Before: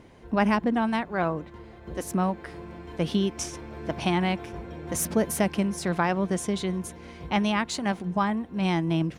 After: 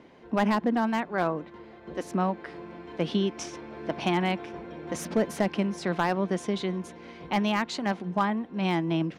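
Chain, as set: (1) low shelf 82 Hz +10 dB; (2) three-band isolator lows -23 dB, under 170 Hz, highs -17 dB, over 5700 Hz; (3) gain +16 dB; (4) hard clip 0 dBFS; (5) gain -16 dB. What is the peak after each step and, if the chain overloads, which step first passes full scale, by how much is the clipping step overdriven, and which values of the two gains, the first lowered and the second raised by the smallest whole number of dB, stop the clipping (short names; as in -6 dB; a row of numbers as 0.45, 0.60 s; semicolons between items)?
-10.5, -8.5, +7.5, 0.0, -16.0 dBFS; step 3, 7.5 dB; step 3 +8 dB, step 5 -8 dB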